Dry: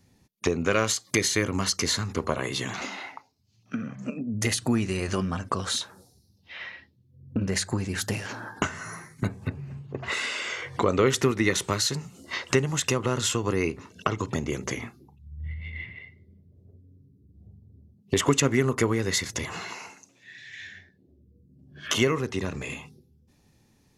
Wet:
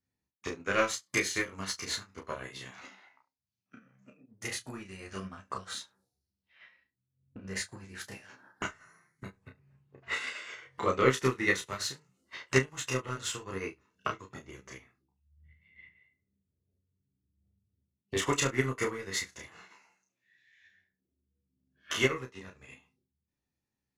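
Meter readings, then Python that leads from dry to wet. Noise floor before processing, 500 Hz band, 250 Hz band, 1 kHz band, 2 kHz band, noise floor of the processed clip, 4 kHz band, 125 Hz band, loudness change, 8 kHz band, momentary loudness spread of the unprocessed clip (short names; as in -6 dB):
-63 dBFS, -7.0 dB, -10.5 dB, -5.5 dB, -3.5 dB, under -85 dBFS, -8.5 dB, -10.5 dB, -5.5 dB, -9.0 dB, 16 LU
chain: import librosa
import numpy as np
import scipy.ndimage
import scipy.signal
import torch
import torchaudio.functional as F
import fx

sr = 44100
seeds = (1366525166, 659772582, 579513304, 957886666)

p1 = np.clip(x, -10.0 ** (-25.5 / 20.0), 10.0 ** (-25.5 / 20.0))
p2 = x + F.gain(torch.from_numpy(p1), -10.5).numpy()
p3 = fx.peak_eq(p2, sr, hz=1700.0, db=5.0, octaves=1.3)
p4 = fx.doubler(p3, sr, ms=31.0, db=-2.5)
p5 = p4 + fx.room_early_taps(p4, sr, ms=(15, 42, 70), db=(-7.5, -13.5, -16.5), dry=0)
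p6 = fx.dynamic_eq(p5, sr, hz=200.0, q=0.82, threshold_db=-32.0, ratio=4.0, max_db=-4)
p7 = fx.upward_expand(p6, sr, threshold_db=-32.0, expansion=2.5)
y = F.gain(torch.from_numpy(p7), -4.5).numpy()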